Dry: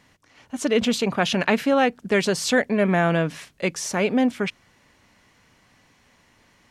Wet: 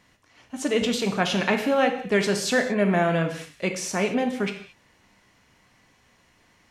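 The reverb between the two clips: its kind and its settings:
reverb whose tail is shaped and stops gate 250 ms falling, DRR 4.5 dB
level −3 dB

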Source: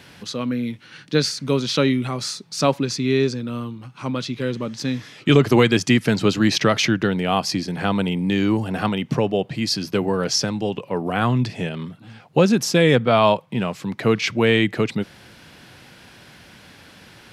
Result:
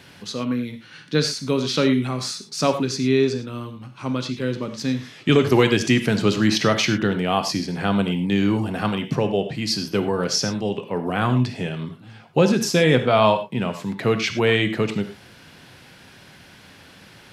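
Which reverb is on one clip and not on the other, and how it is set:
reverb whose tail is shaped and stops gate 130 ms flat, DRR 7.5 dB
level −1.5 dB

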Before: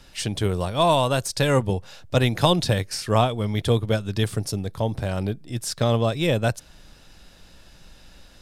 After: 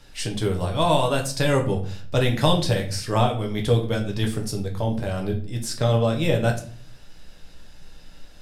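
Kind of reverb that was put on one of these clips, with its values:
rectangular room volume 41 cubic metres, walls mixed, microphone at 0.52 metres
level −3 dB

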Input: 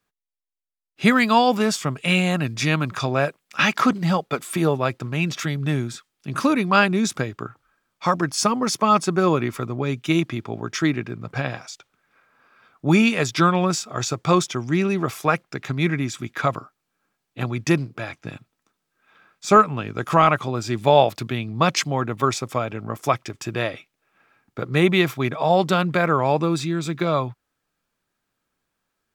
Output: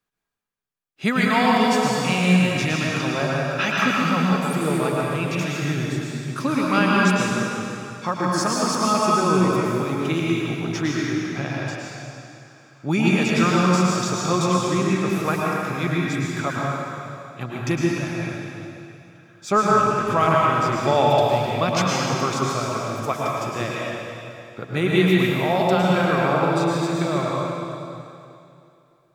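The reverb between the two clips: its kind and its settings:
dense smooth reverb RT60 2.7 s, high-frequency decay 0.95×, pre-delay 95 ms, DRR −4.5 dB
level −5.5 dB

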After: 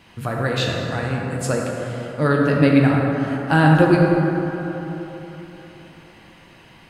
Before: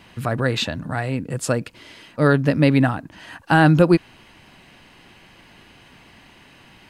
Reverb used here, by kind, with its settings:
dense smooth reverb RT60 3.7 s, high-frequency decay 0.4×, DRR −2 dB
level −3 dB

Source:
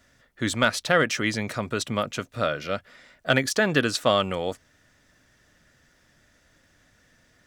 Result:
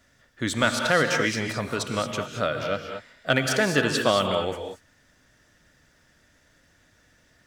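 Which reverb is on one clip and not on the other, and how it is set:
reverb whose tail is shaped and stops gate 250 ms rising, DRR 4 dB
level −1 dB

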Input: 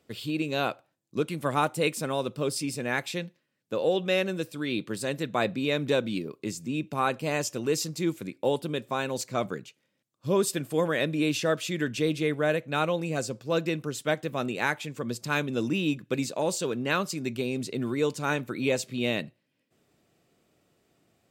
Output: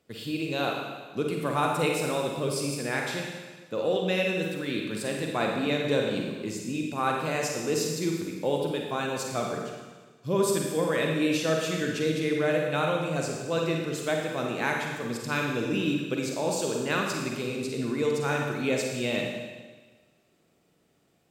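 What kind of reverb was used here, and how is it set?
four-comb reverb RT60 1.4 s, DRR 0 dB
level −2.5 dB

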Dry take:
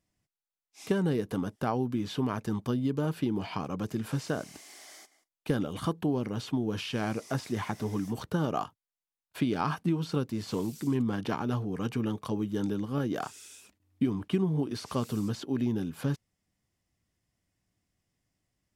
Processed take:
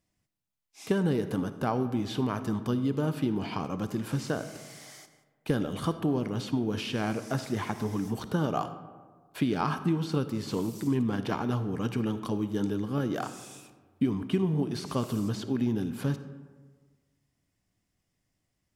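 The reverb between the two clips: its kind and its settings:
comb and all-pass reverb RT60 1.5 s, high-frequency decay 0.45×, pre-delay 15 ms, DRR 11 dB
level +1 dB

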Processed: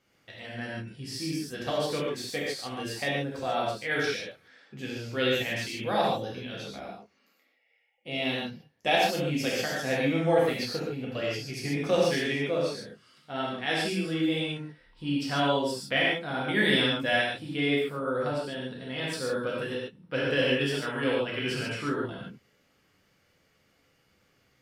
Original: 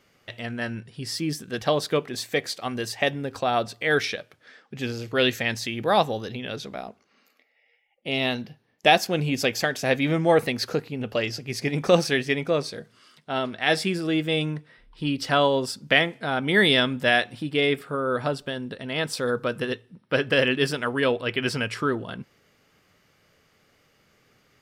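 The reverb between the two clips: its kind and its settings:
reverb whose tail is shaped and stops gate 170 ms flat, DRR −5 dB
level −11 dB

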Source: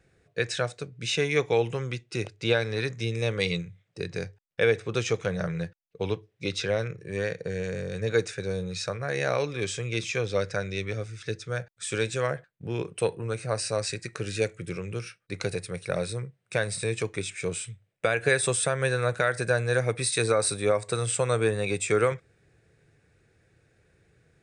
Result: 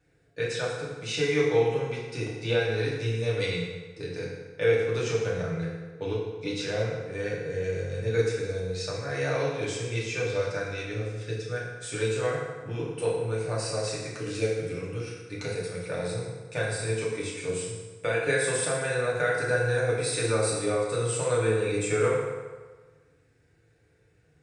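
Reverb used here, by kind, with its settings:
feedback delay network reverb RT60 1.4 s, low-frequency decay 0.85×, high-frequency decay 0.7×, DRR −6.5 dB
level −8.5 dB

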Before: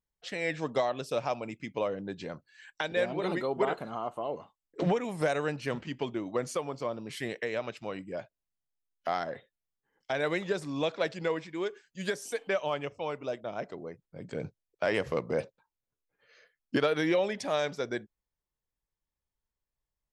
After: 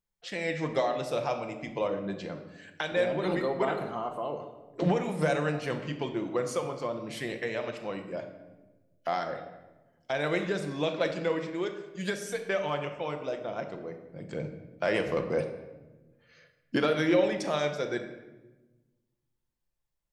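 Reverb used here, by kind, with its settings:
rectangular room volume 670 cubic metres, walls mixed, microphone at 0.81 metres

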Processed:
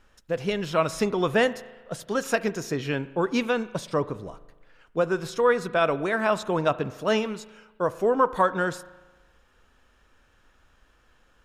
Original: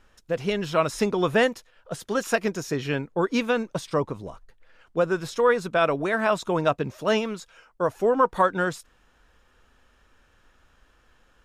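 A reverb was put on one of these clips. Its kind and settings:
spring reverb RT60 1.2 s, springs 37 ms, chirp 40 ms, DRR 16 dB
level −1 dB

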